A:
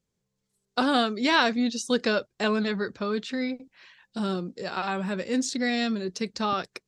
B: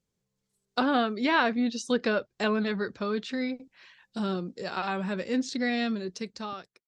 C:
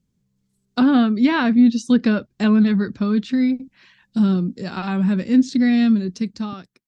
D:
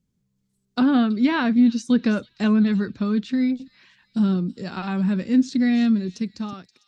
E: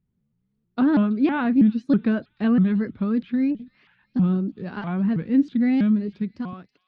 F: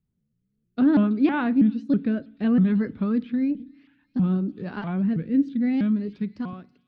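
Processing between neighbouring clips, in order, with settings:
ending faded out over 1.02 s; treble ducked by the level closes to 2700 Hz, closed at -20 dBFS; gain -1.5 dB
resonant low shelf 340 Hz +10 dB, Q 1.5; gain +2.5 dB
thin delay 0.326 s, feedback 39%, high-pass 4200 Hz, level -12 dB; gain -3 dB
air absorption 430 m; shaped vibrato saw up 3.1 Hz, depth 250 cents
rotary speaker horn 0.6 Hz; FDN reverb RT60 0.59 s, low-frequency decay 1.6×, high-frequency decay 0.85×, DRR 19.5 dB

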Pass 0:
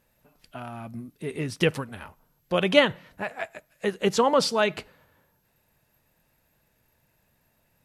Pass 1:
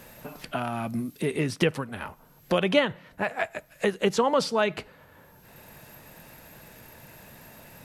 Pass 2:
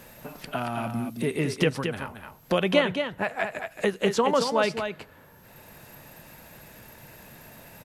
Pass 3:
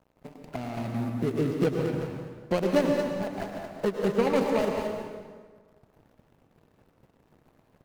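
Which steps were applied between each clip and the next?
three-band squash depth 70%
echo 0.224 s -7 dB
median filter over 41 samples; crossover distortion -49.5 dBFS; plate-style reverb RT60 1.6 s, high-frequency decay 0.75×, pre-delay 90 ms, DRR 3 dB

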